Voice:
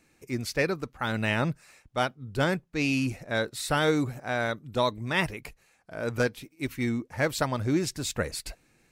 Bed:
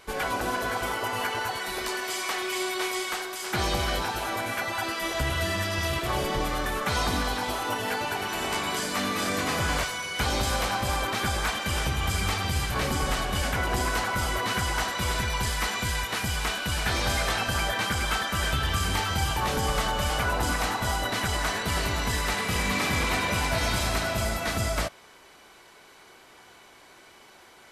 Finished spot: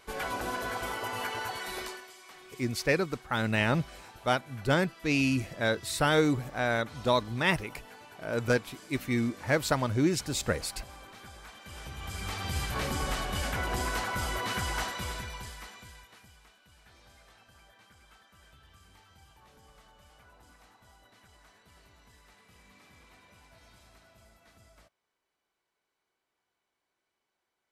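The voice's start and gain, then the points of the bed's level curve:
2.30 s, 0.0 dB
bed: 1.81 s -5.5 dB
2.14 s -21.5 dB
11.48 s -21.5 dB
12.57 s -5 dB
14.84 s -5 dB
16.52 s -32 dB

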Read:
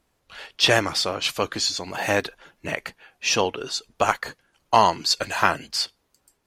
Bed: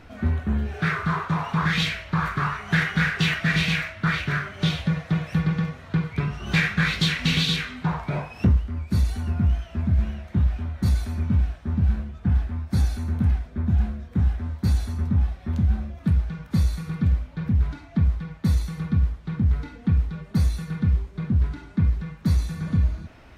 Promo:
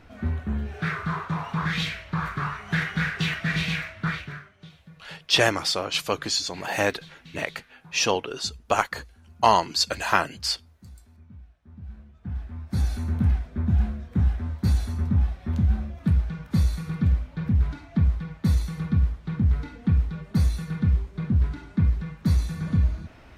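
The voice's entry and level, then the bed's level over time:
4.70 s, -1.5 dB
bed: 4.08 s -4 dB
4.70 s -25.5 dB
11.52 s -25.5 dB
12.95 s -0.5 dB

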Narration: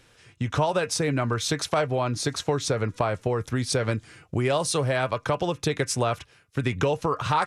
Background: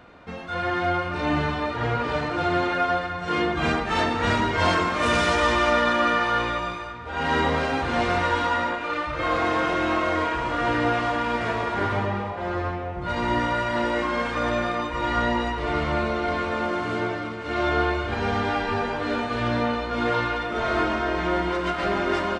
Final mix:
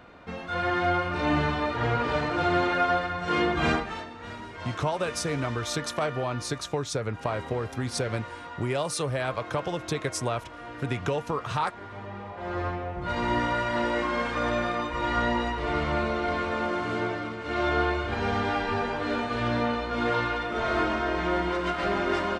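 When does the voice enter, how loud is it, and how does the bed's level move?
4.25 s, -4.5 dB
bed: 3.75 s -1 dB
4.05 s -17.5 dB
11.86 s -17.5 dB
12.62 s -2.5 dB

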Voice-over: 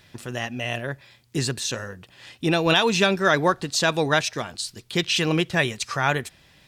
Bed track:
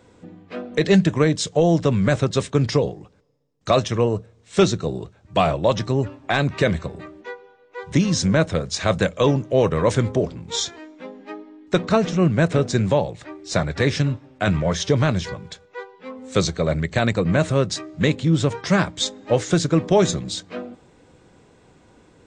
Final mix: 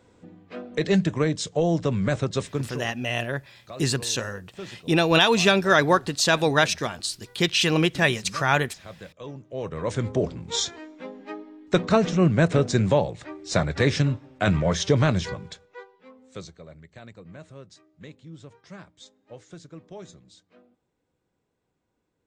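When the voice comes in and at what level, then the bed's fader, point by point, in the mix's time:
2.45 s, +1.0 dB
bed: 2.47 s -5.5 dB
2.92 s -22.5 dB
9.19 s -22.5 dB
10.28 s -1.5 dB
15.41 s -1.5 dB
16.72 s -25 dB

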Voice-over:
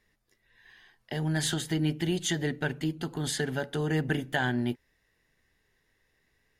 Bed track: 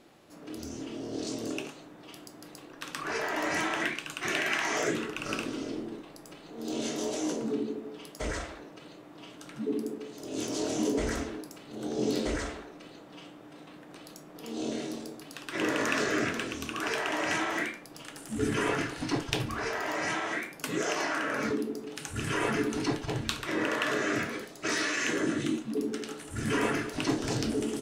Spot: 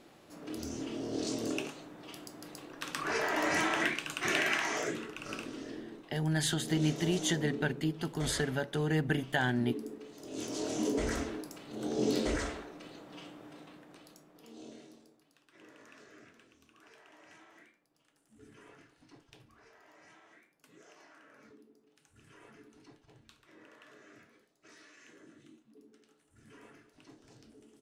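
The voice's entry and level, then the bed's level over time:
5.00 s, -2.0 dB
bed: 4.43 s 0 dB
4.98 s -7.5 dB
10.00 s -7.5 dB
11.34 s -1 dB
13.46 s -1 dB
15.62 s -28 dB

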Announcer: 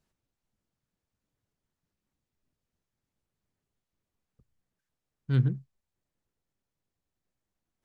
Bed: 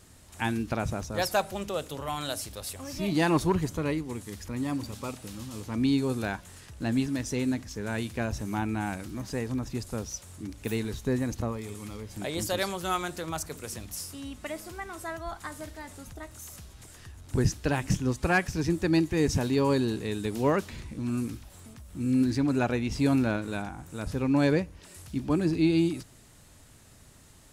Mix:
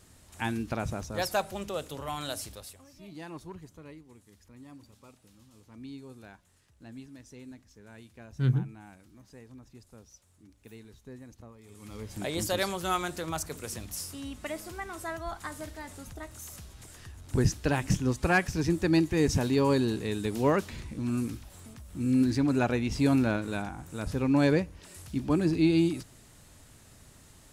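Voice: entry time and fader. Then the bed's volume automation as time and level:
3.10 s, -1.0 dB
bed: 2.50 s -2.5 dB
2.93 s -18.5 dB
11.56 s -18.5 dB
12.02 s 0 dB

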